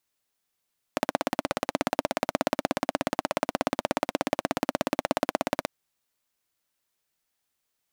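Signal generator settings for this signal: single-cylinder engine model, steady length 4.69 s, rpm 2000, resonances 280/600 Hz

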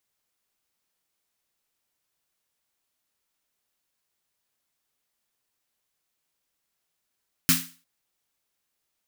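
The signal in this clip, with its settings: snare drum length 0.35 s, tones 170 Hz, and 260 Hz, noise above 1.3 kHz, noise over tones 6 dB, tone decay 0.33 s, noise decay 0.36 s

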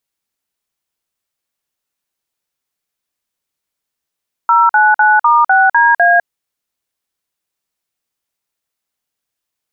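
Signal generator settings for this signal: DTMF "099*6DA", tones 203 ms, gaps 48 ms, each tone -9 dBFS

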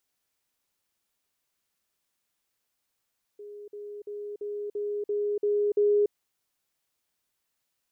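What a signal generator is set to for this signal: level ladder 413 Hz -40 dBFS, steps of 3 dB, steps 8, 0.29 s 0.05 s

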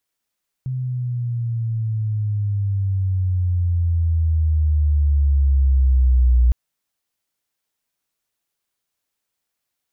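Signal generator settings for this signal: sweep logarithmic 130 Hz -> 60 Hz -21.5 dBFS -> -10.5 dBFS 5.86 s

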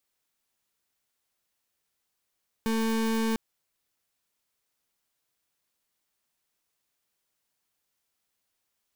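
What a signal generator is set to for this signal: pulse 224 Hz, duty 34% -26.5 dBFS 0.70 s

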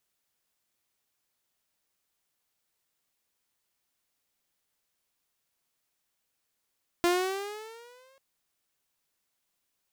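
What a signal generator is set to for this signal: gliding synth tone saw, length 1.14 s, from 344 Hz, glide +8 st, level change -39 dB, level -18 dB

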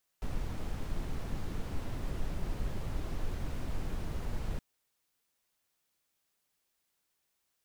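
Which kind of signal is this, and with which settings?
noise brown, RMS -33.5 dBFS 4.37 s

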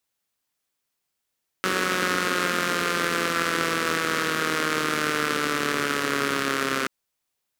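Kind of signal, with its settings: four-cylinder engine model, changing speed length 5.23 s, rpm 5600, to 4000, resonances 280/420/1300 Hz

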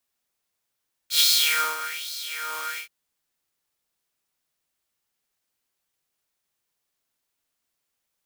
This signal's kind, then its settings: synth patch with filter wobble D#4, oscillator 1 saw, oscillator 2 square, interval +7 st, oscillator 2 level -1 dB, sub -10.5 dB, noise -1 dB, filter highpass, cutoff 1.4 kHz, Q 4.2, filter envelope 1.5 oct, filter decay 0.10 s, attack 95 ms, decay 0.56 s, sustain -16.5 dB, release 0.11 s, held 1.67 s, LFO 1.2 Hz, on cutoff 1 oct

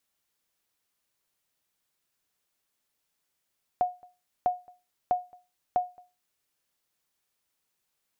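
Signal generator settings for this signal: sonar ping 722 Hz, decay 0.27 s, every 0.65 s, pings 4, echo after 0.22 s, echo -27 dB -17 dBFS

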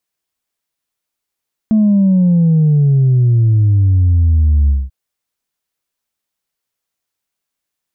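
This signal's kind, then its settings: sub drop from 220 Hz, over 3.19 s, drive 0.5 dB, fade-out 0.21 s, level -8 dB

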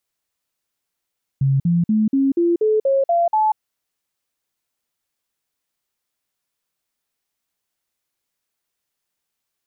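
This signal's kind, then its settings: stepped sine 136 Hz up, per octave 3, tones 9, 0.19 s, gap 0.05 s -13.5 dBFS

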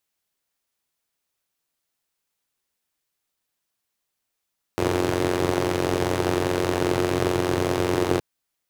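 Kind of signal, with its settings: four-cylinder engine model, steady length 3.42 s, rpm 2700, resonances 130/340 Hz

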